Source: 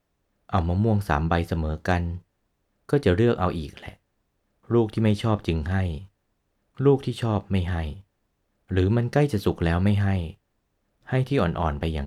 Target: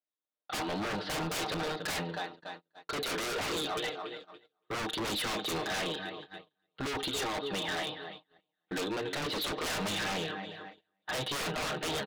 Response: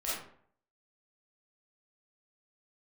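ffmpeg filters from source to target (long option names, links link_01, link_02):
-filter_complex "[0:a]asettb=1/sr,asplit=3[link_01][link_02][link_03];[link_01]atrim=end=6.964[link_04];[link_02]atrim=start=6.96:end=9.22,asetpts=PTS-STARTPTS,afade=type=in:duration=0.004:curve=qsin,afade=type=out:start_time=2.256:duration=0.004:curve=qsin,acompressor=threshold=-27dB:ratio=2[link_05];[link_03]atrim=start=9.216[link_06];[link_04][link_05]acrossfade=duration=0.004:curve1=hsin:curve2=qsin[link_07];[link_07][link_06]acrossfade=duration=0.004:curve1=qsin:curve2=hsin,lowpass=frequency=3800:width_type=q:width=7.3,aecho=1:1:6.5:0.79,asplit=2[link_08][link_09];[link_09]highpass=frequency=720:poles=1,volume=17dB,asoftclip=type=tanh:threshold=-3dB[link_10];[link_08][link_10]amix=inputs=2:normalize=0,lowpass=frequency=1300:poles=1,volume=-6dB,highpass=270,aecho=1:1:284|568|852|1136|1420:0.2|0.102|0.0519|0.0265|0.0135,flanger=delay=0.4:depth=3:regen=-72:speed=0.59:shape=sinusoidal,asoftclip=type=tanh:threshold=-20dB,agate=range=-30dB:threshold=-45dB:ratio=16:detection=peak,aeval=exprs='0.0376*(abs(mod(val(0)/0.0376+3,4)-2)-1)':channel_layout=same"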